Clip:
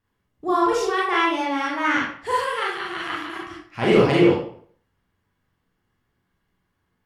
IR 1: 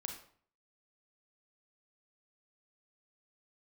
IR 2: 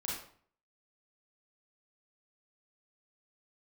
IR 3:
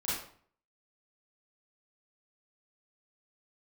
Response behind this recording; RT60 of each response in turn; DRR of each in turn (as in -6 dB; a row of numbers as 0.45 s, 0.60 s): 2; 0.50 s, 0.50 s, 0.50 s; 3.0 dB, -5.5 dB, -10.5 dB